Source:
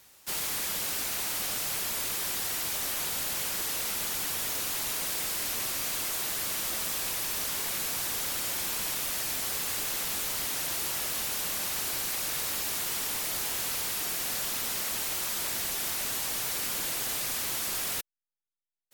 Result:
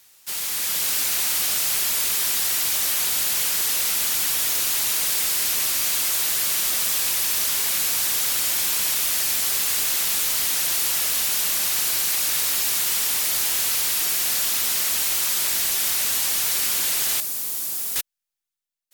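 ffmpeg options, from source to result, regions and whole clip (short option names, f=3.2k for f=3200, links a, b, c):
-filter_complex "[0:a]asettb=1/sr,asplit=3[a][b][c];[a]atrim=end=17.204[d];[b]atrim=start=17.2:end=17.96,asetpts=PTS-STARTPTS,afade=t=in:d=0.004:c=qsin,afade=t=out:st=0.756:d=0.004:c=qsin,highpass=f=160:w=0.5412,highpass=f=160:w=1.3066,volume=32.5dB,asoftclip=hard,volume=-32.5dB,equalizer=f=2.2k:w=0.38:g=-12[e];[c]atrim=start=17.956[f];[d][e]acrossfade=d=0.004:c1=hsin:c2=qsin[g];[g][f]acrossfade=d=0.004:c1=qsin:c2=hsin,dynaudnorm=f=180:g=7:m=6.5dB,tiltshelf=f=1.4k:g=-5,acontrast=71,volume=-7.5dB"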